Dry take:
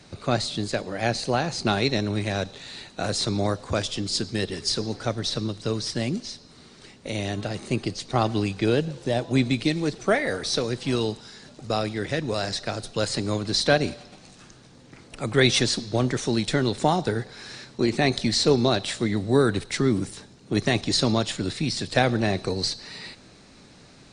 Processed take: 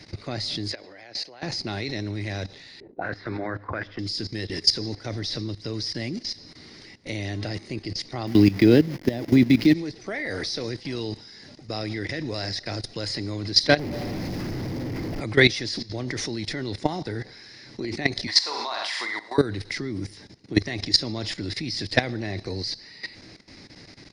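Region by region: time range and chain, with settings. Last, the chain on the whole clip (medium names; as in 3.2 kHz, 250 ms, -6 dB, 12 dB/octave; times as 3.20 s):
0.72–1.43 s: three-band isolator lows -14 dB, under 350 Hz, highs -13 dB, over 6.9 kHz + compression 5:1, threshold -32 dBFS
2.80–3.99 s: bass shelf 150 Hz -6.5 dB + hum notches 50/100/150/200/250/300 Hz + touch-sensitive low-pass 320–1600 Hz up, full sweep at -26 dBFS
8.27–9.74 s: send-on-delta sampling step -36 dBFS + peaking EQ 230 Hz +9.5 dB 1.5 oct + tape noise reduction on one side only encoder only
13.79–15.20 s: one-bit comparator + tilt shelf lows +9.5 dB, about 1.2 kHz
18.27–19.38 s: resonant high-pass 980 Hz, resonance Q 4.5 + flutter echo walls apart 8 m, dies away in 0.48 s
whole clip: graphic EQ with 31 bands 100 Hz +7 dB, 315 Hz +7 dB, 1.25 kHz -4 dB, 2 kHz +10 dB, 5 kHz +12 dB, 8 kHz -12 dB; level held to a coarse grid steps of 16 dB; trim +2 dB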